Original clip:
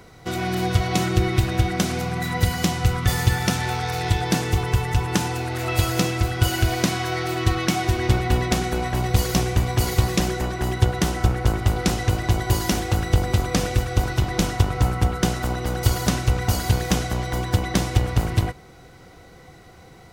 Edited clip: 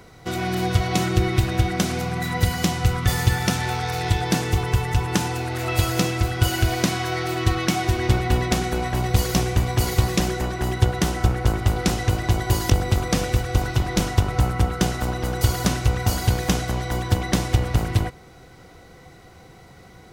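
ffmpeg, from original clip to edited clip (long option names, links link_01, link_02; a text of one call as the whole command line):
ffmpeg -i in.wav -filter_complex "[0:a]asplit=2[link_01][link_02];[link_01]atrim=end=12.702[link_03];[link_02]atrim=start=13.118[link_04];[link_03][link_04]acrossfade=duration=0.004:curve1=hsin:curve2=hsin" out.wav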